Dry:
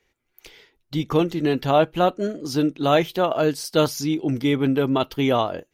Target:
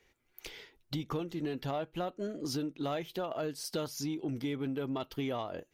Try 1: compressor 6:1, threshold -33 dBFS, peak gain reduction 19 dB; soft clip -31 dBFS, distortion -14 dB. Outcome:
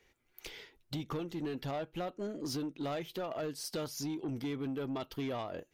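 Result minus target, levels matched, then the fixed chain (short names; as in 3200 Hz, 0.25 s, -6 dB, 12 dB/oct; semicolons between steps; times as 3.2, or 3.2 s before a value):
soft clip: distortion +10 dB
compressor 6:1, threshold -33 dBFS, peak gain reduction 19 dB; soft clip -23.5 dBFS, distortion -25 dB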